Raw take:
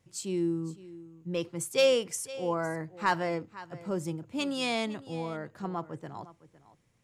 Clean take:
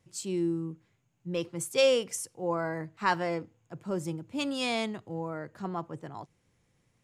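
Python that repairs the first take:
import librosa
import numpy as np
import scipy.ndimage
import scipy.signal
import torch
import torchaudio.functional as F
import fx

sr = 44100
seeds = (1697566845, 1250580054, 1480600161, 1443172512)

y = fx.fix_declip(x, sr, threshold_db=-15.5)
y = fx.fix_echo_inverse(y, sr, delay_ms=508, level_db=-17.5)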